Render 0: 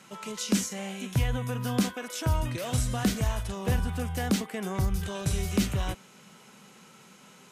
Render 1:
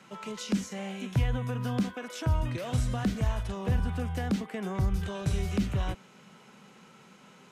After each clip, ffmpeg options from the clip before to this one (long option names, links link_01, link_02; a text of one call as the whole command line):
ffmpeg -i in.wav -filter_complex "[0:a]equalizer=frequency=13000:width_type=o:width=1.8:gain=-11.5,acrossover=split=230[link_01][link_02];[link_02]acompressor=threshold=-33dB:ratio=6[link_03];[link_01][link_03]amix=inputs=2:normalize=0" out.wav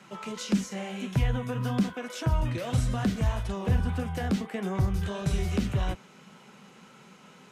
ffmpeg -i in.wav -af "flanger=delay=4.9:depth=7.8:regen=-47:speed=1.7:shape=sinusoidal,volume=6dB" out.wav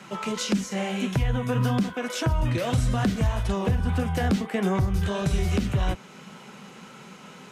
ffmpeg -i in.wav -af "alimiter=limit=-22dB:level=0:latency=1:release=268,volume=7.5dB" out.wav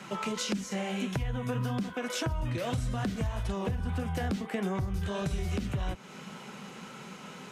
ffmpeg -i in.wav -af "acompressor=threshold=-31dB:ratio=3" out.wav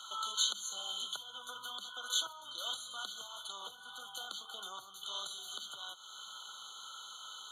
ffmpeg -i in.wav -af "highpass=frequency=2200:width_type=q:width=4.9,afftfilt=real='re*eq(mod(floor(b*sr/1024/1500),2),0)':imag='im*eq(mod(floor(b*sr/1024/1500),2),0)':win_size=1024:overlap=0.75,volume=4dB" out.wav